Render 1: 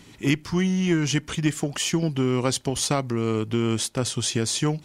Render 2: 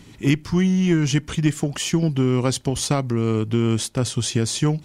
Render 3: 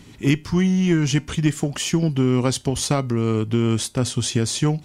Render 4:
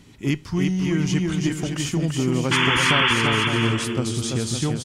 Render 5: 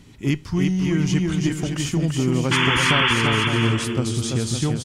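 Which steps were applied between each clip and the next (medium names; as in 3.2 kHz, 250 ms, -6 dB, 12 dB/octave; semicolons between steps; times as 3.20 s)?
bass shelf 250 Hz +7 dB
feedback comb 83 Hz, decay 0.25 s, harmonics odd, mix 40%; trim +4 dB
painted sound noise, 2.51–3.14 s, 860–3500 Hz -16 dBFS; bouncing-ball echo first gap 340 ms, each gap 0.65×, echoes 5; trim -4.5 dB
bass shelf 120 Hz +5 dB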